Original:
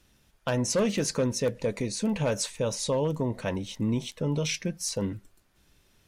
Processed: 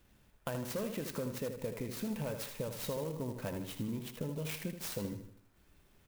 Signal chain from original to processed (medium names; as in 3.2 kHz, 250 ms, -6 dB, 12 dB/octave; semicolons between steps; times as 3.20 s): treble shelf 4.8 kHz -6.5 dB; compression, threshold -34 dBFS, peak gain reduction 11.5 dB; on a send: feedback delay 78 ms, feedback 44%, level -8 dB; on the sum: sampling jitter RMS 0.048 ms; trim -2 dB